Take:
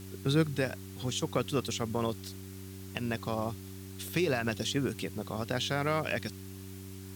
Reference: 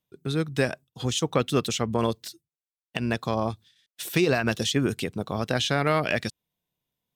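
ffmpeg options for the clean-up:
ffmpeg -i in.wav -af "bandreject=frequency=95.6:width_type=h:width=4,bandreject=frequency=191.2:width_type=h:width=4,bandreject=frequency=286.8:width_type=h:width=4,bandreject=frequency=382.4:width_type=h:width=4,afwtdn=0.0022,asetnsamples=nb_out_samples=441:pad=0,asendcmd='0.55 volume volume 7dB',volume=0dB" out.wav

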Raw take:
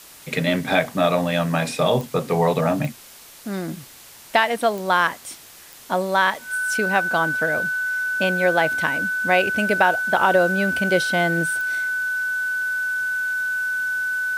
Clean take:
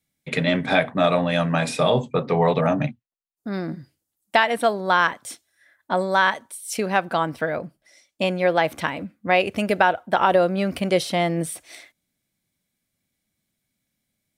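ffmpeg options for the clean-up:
ffmpeg -i in.wav -af "adeclick=threshold=4,bandreject=frequency=1500:width=30,afwtdn=0.0071" out.wav

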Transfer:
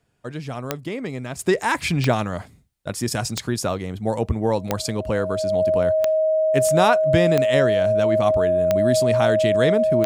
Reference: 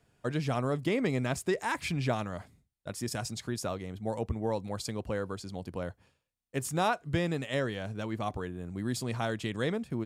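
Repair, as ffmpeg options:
ffmpeg -i in.wav -af "adeclick=threshold=4,bandreject=frequency=630:width=30,asetnsamples=nb_out_samples=441:pad=0,asendcmd='1.39 volume volume -10.5dB',volume=0dB" out.wav

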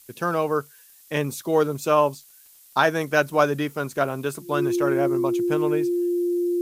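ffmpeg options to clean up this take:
ffmpeg -i in.wav -af "adeclick=threshold=4,bandreject=frequency=350:width=30,afftdn=noise_reduction=16:noise_floor=-52" out.wav

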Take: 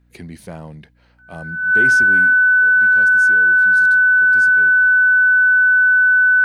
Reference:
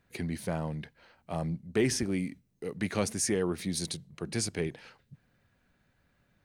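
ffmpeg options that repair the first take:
ffmpeg -i in.wav -filter_complex "[0:a]bandreject=frequency=60:width_type=h:width=4,bandreject=frequency=120:width_type=h:width=4,bandreject=frequency=180:width_type=h:width=4,bandreject=frequency=240:width_type=h:width=4,bandreject=frequency=300:width_type=h:width=4,bandreject=frequency=1500:width=30,asplit=3[link_01][link_02][link_03];[link_01]afade=type=out:start_time=4.81:duration=0.02[link_04];[link_02]highpass=frequency=140:width=0.5412,highpass=frequency=140:width=1.3066,afade=type=in:start_time=4.81:duration=0.02,afade=type=out:start_time=4.93:duration=0.02[link_05];[link_03]afade=type=in:start_time=4.93:duration=0.02[link_06];[link_04][link_05][link_06]amix=inputs=3:normalize=0,asetnsamples=nb_out_samples=441:pad=0,asendcmd='2.59 volume volume 9.5dB',volume=0dB" out.wav

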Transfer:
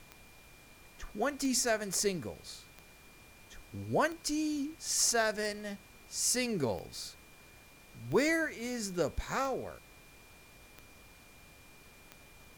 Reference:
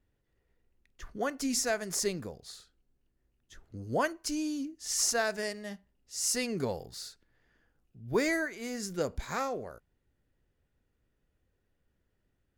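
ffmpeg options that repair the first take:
ffmpeg -i in.wav -af "adeclick=threshold=4,bandreject=frequency=2400:width=30,afftdn=noise_reduction=19:noise_floor=-57" out.wav

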